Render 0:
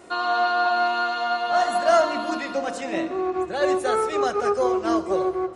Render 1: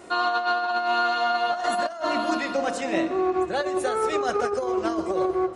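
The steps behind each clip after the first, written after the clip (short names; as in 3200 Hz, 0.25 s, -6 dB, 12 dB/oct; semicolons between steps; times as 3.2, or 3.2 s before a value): negative-ratio compressor -23 dBFS, ratio -0.5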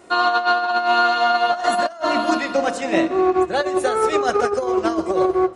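upward expander 1.5:1, over -39 dBFS; gain +7 dB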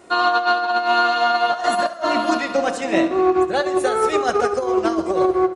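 feedback echo 70 ms, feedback 47%, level -15.5 dB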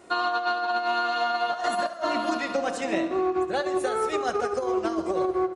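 compressor, threshold -18 dBFS, peak gain reduction 6.5 dB; gain -4 dB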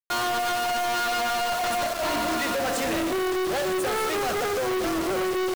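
companded quantiser 2-bit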